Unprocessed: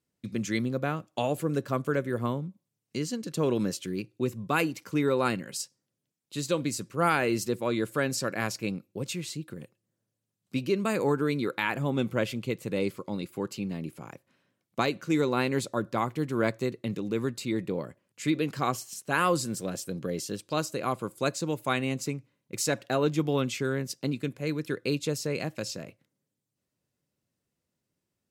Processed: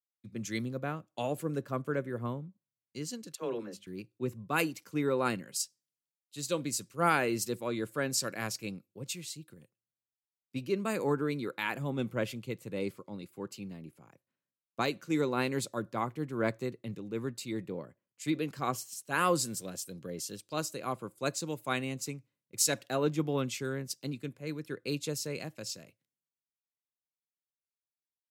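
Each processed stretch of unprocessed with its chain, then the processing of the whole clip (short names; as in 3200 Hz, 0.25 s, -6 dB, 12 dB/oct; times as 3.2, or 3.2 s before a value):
3.35–3.87 tone controls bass -12 dB, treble -10 dB + notches 50/100/150/200/250 Hz + dispersion lows, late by 47 ms, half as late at 460 Hz
whole clip: high shelf 6000 Hz +5 dB; three-band expander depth 70%; gain -5.5 dB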